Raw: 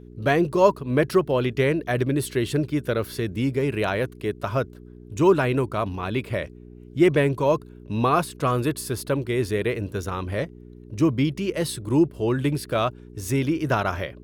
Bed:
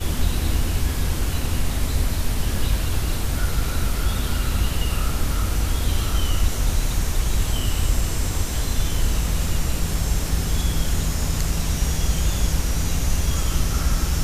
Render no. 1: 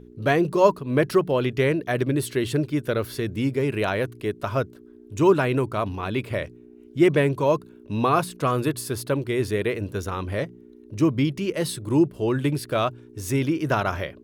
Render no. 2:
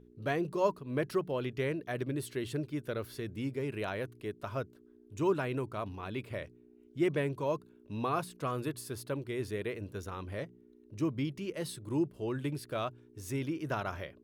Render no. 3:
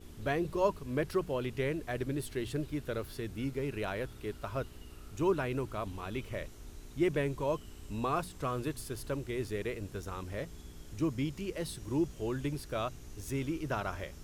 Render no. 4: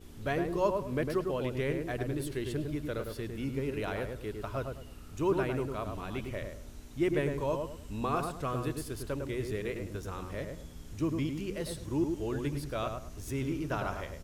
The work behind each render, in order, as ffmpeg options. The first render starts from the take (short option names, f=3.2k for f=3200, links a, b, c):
-af "bandreject=f=60:t=h:w=4,bandreject=f=120:t=h:w=4,bandreject=f=180:t=h:w=4"
-af "volume=-12dB"
-filter_complex "[1:a]volume=-28dB[a];[0:a][a]amix=inputs=2:normalize=0"
-filter_complex "[0:a]asplit=2[a][b];[b]adelay=104,lowpass=f=1.4k:p=1,volume=-4dB,asplit=2[c][d];[d]adelay=104,lowpass=f=1.4k:p=1,volume=0.31,asplit=2[e][f];[f]adelay=104,lowpass=f=1.4k:p=1,volume=0.31,asplit=2[g][h];[h]adelay=104,lowpass=f=1.4k:p=1,volume=0.31[i];[a][c][e][g][i]amix=inputs=5:normalize=0"